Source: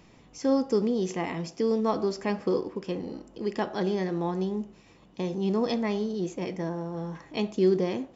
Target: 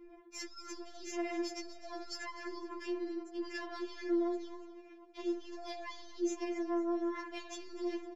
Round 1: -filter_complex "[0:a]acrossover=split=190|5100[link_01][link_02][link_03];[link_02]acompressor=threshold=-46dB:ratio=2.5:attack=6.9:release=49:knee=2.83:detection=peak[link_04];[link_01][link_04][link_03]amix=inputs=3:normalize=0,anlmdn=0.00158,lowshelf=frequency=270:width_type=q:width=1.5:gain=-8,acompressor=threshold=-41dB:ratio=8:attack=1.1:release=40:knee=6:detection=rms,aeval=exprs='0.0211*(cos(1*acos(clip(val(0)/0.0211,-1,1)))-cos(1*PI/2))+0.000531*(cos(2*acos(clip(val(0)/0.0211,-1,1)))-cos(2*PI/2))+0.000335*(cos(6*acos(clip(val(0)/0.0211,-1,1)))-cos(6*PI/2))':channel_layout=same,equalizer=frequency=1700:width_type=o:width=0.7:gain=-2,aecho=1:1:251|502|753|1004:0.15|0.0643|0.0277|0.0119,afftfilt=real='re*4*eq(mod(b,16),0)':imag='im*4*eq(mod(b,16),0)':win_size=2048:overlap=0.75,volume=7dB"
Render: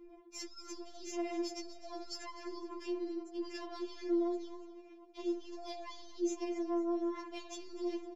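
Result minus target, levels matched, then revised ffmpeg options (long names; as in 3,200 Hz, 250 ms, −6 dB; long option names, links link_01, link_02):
2,000 Hz band −6.5 dB
-filter_complex "[0:a]acrossover=split=190|5100[link_01][link_02][link_03];[link_02]acompressor=threshold=-46dB:ratio=2.5:attack=6.9:release=49:knee=2.83:detection=peak[link_04];[link_01][link_04][link_03]amix=inputs=3:normalize=0,anlmdn=0.00158,lowshelf=frequency=270:width_type=q:width=1.5:gain=-8,acompressor=threshold=-41dB:ratio=8:attack=1.1:release=40:knee=6:detection=rms,aeval=exprs='0.0211*(cos(1*acos(clip(val(0)/0.0211,-1,1)))-cos(1*PI/2))+0.000531*(cos(2*acos(clip(val(0)/0.0211,-1,1)))-cos(2*PI/2))+0.000335*(cos(6*acos(clip(val(0)/0.0211,-1,1)))-cos(6*PI/2))':channel_layout=same,equalizer=frequency=1700:width_type=o:width=0.7:gain=8,aecho=1:1:251|502|753|1004:0.15|0.0643|0.0277|0.0119,afftfilt=real='re*4*eq(mod(b,16),0)':imag='im*4*eq(mod(b,16),0)':win_size=2048:overlap=0.75,volume=7dB"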